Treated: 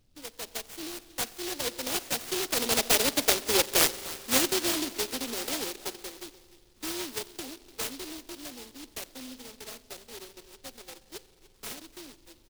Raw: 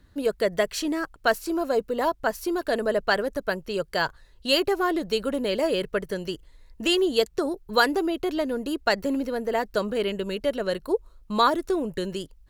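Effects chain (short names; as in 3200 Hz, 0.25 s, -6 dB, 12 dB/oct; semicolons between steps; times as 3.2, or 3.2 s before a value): sample sorter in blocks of 32 samples; Doppler pass-by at 3.49, 21 m/s, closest 8.5 m; steep high-pass 230 Hz 72 dB/oct; gate -54 dBFS, range -15 dB; AGC gain up to 5 dB; added noise brown -62 dBFS; on a send: echo 0.296 s -19 dB; on the sum: spring tank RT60 2.6 s, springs 43 ms, chirp 60 ms, DRR 15 dB; noise-modulated delay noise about 3900 Hz, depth 0.25 ms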